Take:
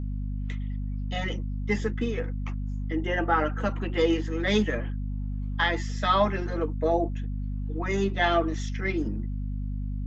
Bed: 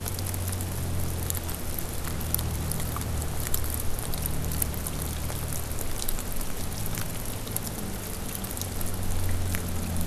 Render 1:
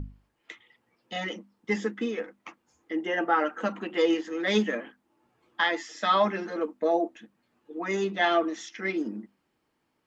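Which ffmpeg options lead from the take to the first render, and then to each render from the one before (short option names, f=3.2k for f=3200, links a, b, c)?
-af "bandreject=f=50:t=h:w=6,bandreject=f=100:t=h:w=6,bandreject=f=150:t=h:w=6,bandreject=f=200:t=h:w=6,bandreject=f=250:t=h:w=6"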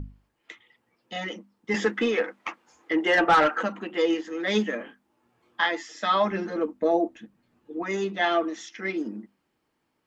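-filter_complex "[0:a]asettb=1/sr,asplit=3[a][b][c];[a]atrim=end=1.744[d];[b]atrim=start=1.74:end=3.63,asetpts=PTS-STARTPTS,afade=t=in:d=0.004:c=qsin,afade=t=out:st=1.886:d=0.004:c=qsin,asplit=2[e][f];[f]highpass=f=720:p=1,volume=19dB,asoftclip=type=tanh:threshold=-10dB[g];[e][g]amix=inputs=2:normalize=0,lowpass=f=3.3k:p=1,volume=-6dB[h];[c]atrim=start=3.626[i];[d][h]acrossfade=d=0.004:c1=hsin:c2=qsin[j];[j][i]acrossfade=d=0.004:c1=qsin:c2=hsin,asettb=1/sr,asplit=3[k][l][m];[k]atrim=end=4.784[n];[l]atrim=start=4.78:end=5.66,asetpts=PTS-STARTPTS,afade=t=in:d=0.004:c=qsin,afade=t=out:st=0.876:d=0.004:c=qsin,asplit=2[o][p];[p]adelay=25,volume=-4.5dB[q];[o][q]amix=inputs=2:normalize=0,atrim=end_sample=38808[r];[m]atrim=start=5.656[s];[n][r]acrossfade=d=0.004:c1=hsin:c2=qsin[t];[t][s]acrossfade=d=0.004:c1=qsin:c2=hsin,asettb=1/sr,asplit=3[u][v][w];[u]atrim=end=6.314[x];[v]atrim=start=6.31:end=7.83,asetpts=PTS-STARTPTS,afade=t=in:d=0.004:c=qsin,afade=t=out:st=1.516:d=0.004:c=qsin,lowshelf=f=230:g=11.5[y];[w]atrim=start=7.826[z];[x][y]acrossfade=d=0.004:c1=hsin:c2=qsin[aa];[aa][z]acrossfade=d=0.004:c1=qsin:c2=hsin"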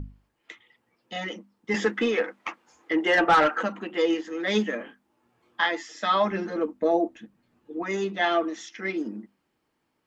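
-af anull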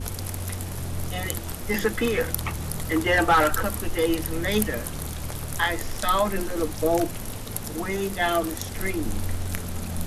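-filter_complex "[1:a]volume=-1dB[a];[0:a][a]amix=inputs=2:normalize=0"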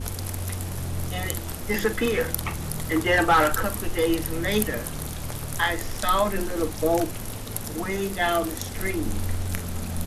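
-filter_complex "[0:a]asplit=2[a][b];[b]adelay=45,volume=-13dB[c];[a][c]amix=inputs=2:normalize=0"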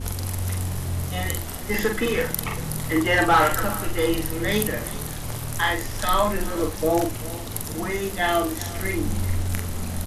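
-filter_complex "[0:a]asplit=2[a][b];[b]adelay=44,volume=-4dB[c];[a][c]amix=inputs=2:normalize=0,aecho=1:1:392:0.133"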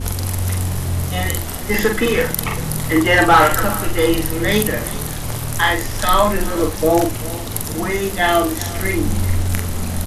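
-af "volume=6.5dB,alimiter=limit=-1dB:level=0:latency=1"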